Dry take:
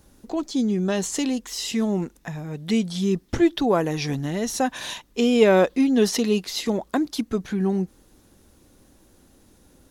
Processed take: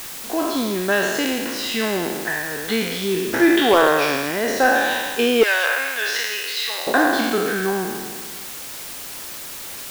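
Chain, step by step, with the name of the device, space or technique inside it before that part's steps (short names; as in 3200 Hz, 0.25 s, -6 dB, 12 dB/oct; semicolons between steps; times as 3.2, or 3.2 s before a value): spectral trails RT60 1.57 s; drive-through speaker (BPF 350–3500 Hz; bell 1600 Hz +10 dB 0.31 oct; hard clip -11.5 dBFS, distortion -16 dB; white noise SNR 14 dB); 5.43–6.87 HPF 1300 Hz 12 dB/oct; gain +4.5 dB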